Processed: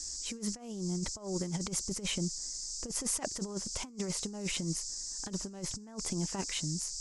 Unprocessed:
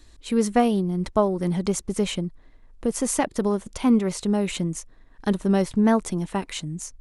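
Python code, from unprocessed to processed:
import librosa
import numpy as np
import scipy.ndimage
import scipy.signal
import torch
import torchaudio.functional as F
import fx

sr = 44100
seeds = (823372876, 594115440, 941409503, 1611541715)

y = fx.dmg_noise_band(x, sr, seeds[0], low_hz=4800.0, high_hz=7900.0, level_db=-36.0)
y = fx.over_compress(y, sr, threshold_db=-26.0, ratio=-0.5)
y = F.gain(torch.from_numpy(y), -9.0).numpy()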